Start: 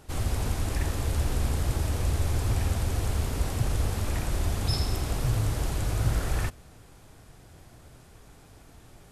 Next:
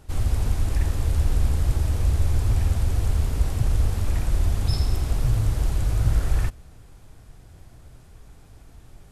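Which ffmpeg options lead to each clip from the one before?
ffmpeg -i in.wav -af "lowshelf=frequency=100:gain=11.5,volume=-2dB" out.wav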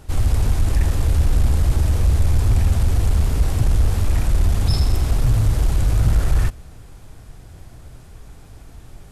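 ffmpeg -i in.wav -af "asoftclip=type=tanh:threshold=-14dB,volume=6.5dB" out.wav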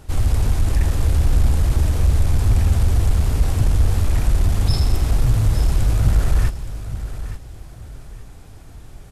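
ffmpeg -i in.wav -af "aecho=1:1:869|1738|2607:0.251|0.0703|0.0197" out.wav

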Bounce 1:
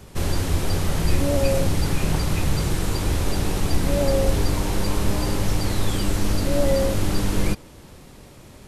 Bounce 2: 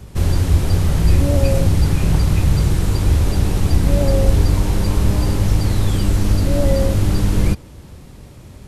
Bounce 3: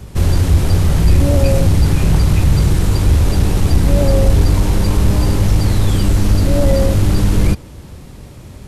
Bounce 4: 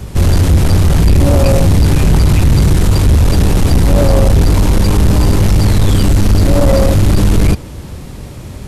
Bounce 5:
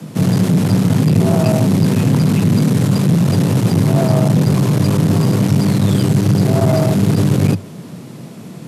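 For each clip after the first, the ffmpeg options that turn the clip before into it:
ffmpeg -i in.wav -af "equalizer=frequency=69:width_type=o:width=3:gain=10" out.wav
ffmpeg -i in.wav -af "acontrast=27,volume=-1dB" out.wav
ffmpeg -i in.wav -af "asoftclip=type=tanh:threshold=-11dB,volume=7dB" out.wav
ffmpeg -i in.wav -af "afreqshift=96,volume=-5dB" out.wav

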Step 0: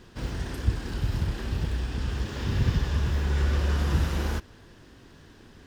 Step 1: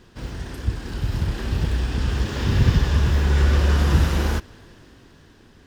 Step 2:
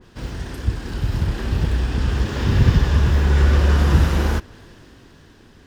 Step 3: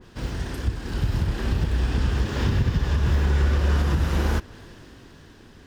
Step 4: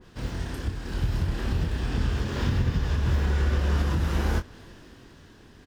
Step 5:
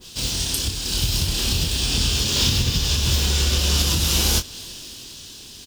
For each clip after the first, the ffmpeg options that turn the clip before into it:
ffmpeg -i in.wav -af "dynaudnorm=framelen=270:gausssize=9:maxgain=7.5dB" out.wav
ffmpeg -i in.wav -af "adynamicequalizer=threshold=0.00794:dfrequency=2300:dqfactor=0.7:tfrequency=2300:tqfactor=0.7:attack=5:release=100:ratio=0.375:range=1.5:mode=cutabove:tftype=highshelf,volume=2.5dB" out.wav
ffmpeg -i in.wav -af "alimiter=limit=-13dB:level=0:latency=1:release=312" out.wav
ffmpeg -i in.wav -filter_complex "[0:a]asplit=2[link_01][link_02];[link_02]adelay=24,volume=-7dB[link_03];[link_01][link_03]amix=inputs=2:normalize=0,volume=-3.5dB" out.wav
ffmpeg -i in.wav -af "aexciter=amount=8.5:drive=6.9:freq=2700,volume=2dB" out.wav

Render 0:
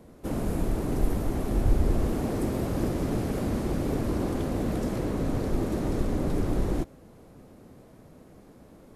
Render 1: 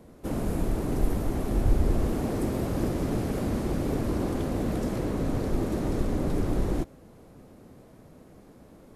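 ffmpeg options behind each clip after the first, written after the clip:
ffmpeg -i in.wav -af anull out.wav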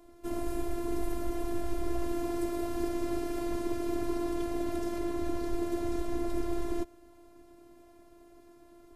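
ffmpeg -i in.wav -filter_complex "[0:a]acrossover=split=320|1500|3400[link_01][link_02][link_03][link_04];[link_01]alimiter=limit=-21.5dB:level=0:latency=1:release=137[link_05];[link_05][link_02][link_03][link_04]amix=inputs=4:normalize=0,afftfilt=real='hypot(re,im)*cos(PI*b)':imag='0':win_size=512:overlap=0.75" out.wav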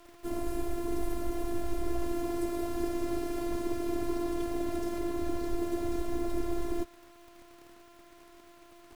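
ffmpeg -i in.wav -af "acrusher=bits=8:mix=0:aa=0.000001" out.wav

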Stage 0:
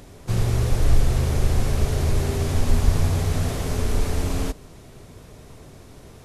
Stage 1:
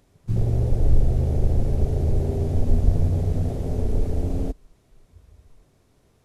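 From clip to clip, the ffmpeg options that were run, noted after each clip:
ffmpeg -i in.wav -af "afwtdn=0.0562" out.wav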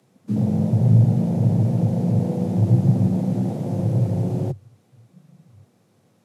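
ffmpeg -i in.wav -af "afreqshift=96" out.wav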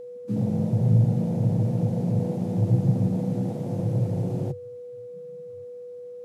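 ffmpeg -i in.wav -af "aeval=exprs='val(0)+0.0251*sin(2*PI*490*n/s)':channel_layout=same,volume=-4.5dB" out.wav

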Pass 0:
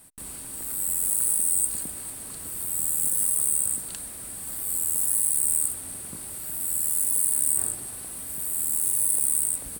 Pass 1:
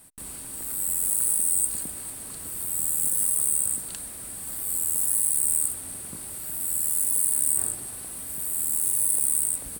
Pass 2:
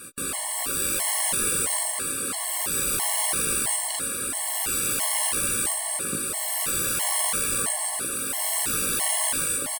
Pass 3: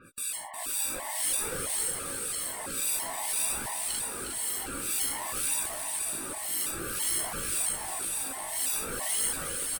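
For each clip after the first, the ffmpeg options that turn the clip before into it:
ffmpeg -i in.wav -af anull out.wav
ffmpeg -i in.wav -filter_complex "[0:a]asplit=2[link_01][link_02];[link_02]highpass=frequency=720:poles=1,volume=28dB,asoftclip=type=tanh:threshold=-6.5dB[link_03];[link_01][link_03]amix=inputs=2:normalize=0,lowpass=frequency=3000:poles=1,volume=-6dB,asplit=2[link_04][link_05];[link_05]adelay=18,volume=-7.5dB[link_06];[link_04][link_06]amix=inputs=2:normalize=0,afftfilt=real='re*gt(sin(2*PI*1.5*pts/sr)*(1-2*mod(floor(b*sr/1024/560),2)),0)':imag='im*gt(sin(2*PI*1.5*pts/sr)*(1-2*mod(floor(b*sr/1024/560),2)),0)':win_size=1024:overlap=0.75" out.wav
ffmpeg -i in.wav -filter_complex "[0:a]flanger=delay=1:depth=2.9:regen=51:speed=0.54:shape=triangular,acrossover=split=2000[link_01][link_02];[link_01]aeval=exprs='val(0)*(1-1/2+1/2*cos(2*PI*1.9*n/s))':channel_layout=same[link_03];[link_02]aeval=exprs='val(0)*(1-1/2-1/2*cos(2*PI*1.9*n/s))':channel_layout=same[link_04];[link_03][link_04]amix=inputs=2:normalize=0,asplit=2[link_05][link_06];[link_06]aecho=0:1:360|720|1080|1440|1800|2160|2520:0.447|0.25|0.14|0.0784|0.0439|0.0246|0.0138[link_07];[link_05][link_07]amix=inputs=2:normalize=0,volume=1.5dB" out.wav

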